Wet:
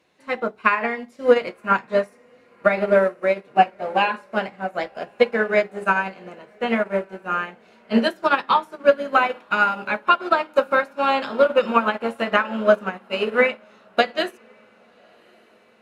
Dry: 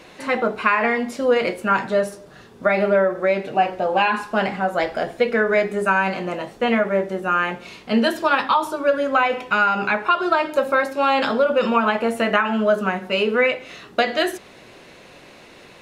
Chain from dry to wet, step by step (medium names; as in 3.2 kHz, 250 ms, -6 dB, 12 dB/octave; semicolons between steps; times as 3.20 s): high-pass 58 Hz; echo that smears into a reverb 1101 ms, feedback 60%, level -14 dB; upward expansion 2.5:1, over -29 dBFS; trim +4.5 dB